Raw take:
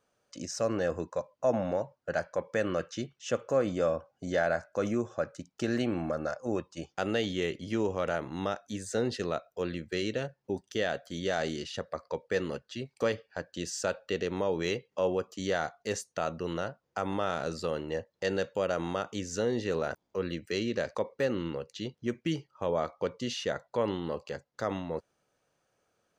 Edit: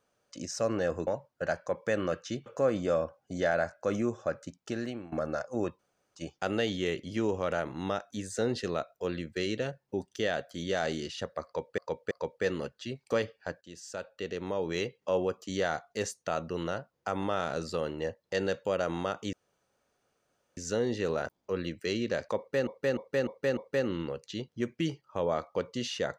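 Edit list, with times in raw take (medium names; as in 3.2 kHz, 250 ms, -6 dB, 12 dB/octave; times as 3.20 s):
1.07–1.74 s: delete
3.13–3.38 s: delete
5.40–6.04 s: fade out linear, to -17.5 dB
6.71 s: insert room tone 0.36 s
12.01–12.34 s: loop, 3 plays
13.51–14.90 s: fade in, from -14.5 dB
19.23 s: insert room tone 1.24 s
21.03–21.33 s: loop, 5 plays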